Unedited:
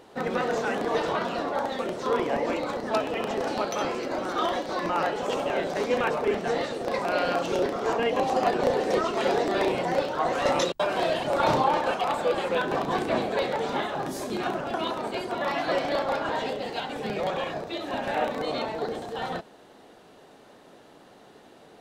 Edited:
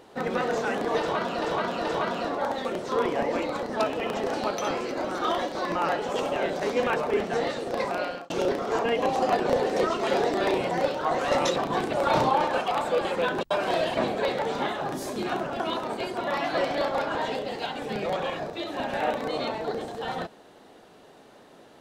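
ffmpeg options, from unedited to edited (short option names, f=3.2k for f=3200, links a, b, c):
-filter_complex "[0:a]asplit=8[a][b][c][d][e][f][g][h];[a]atrim=end=1.422[i];[b]atrim=start=0.988:end=1.422[j];[c]atrim=start=0.988:end=7.44,asetpts=PTS-STARTPTS,afade=t=out:st=6.012:d=0.44[k];[d]atrim=start=7.44:end=10.702,asetpts=PTS-STARTPTS,afade=t=in:d=0.004:c=hsin[l];[e]atrim=start=12.738:end=13.112[m];[f]atrim=start=11.258:end=12.742[n];[g]atrim=start=10.698:end=11.262[o];[h]atrim=start=13.108[p];[i][j]acrossfade=d=0.004:c1=hsin:c2=hsin[q];[k][l]concat=n=2:v=0:a=1[r];[q][r]acrossfade=d=0.004:c1=hsin:c2=hsin[s];[s][m]acrossfade=d=0.004:c1=hsin:c2=hsin[t];[t][n]acrossfade=d=0.004:c1=hsin:c2=hsin[u];[u][o]acrossfade=d=0.004:c1=hsin:c2=hsin[v];[v][p]acrossfade=d=0.004:c1=hsin:c2=hsin"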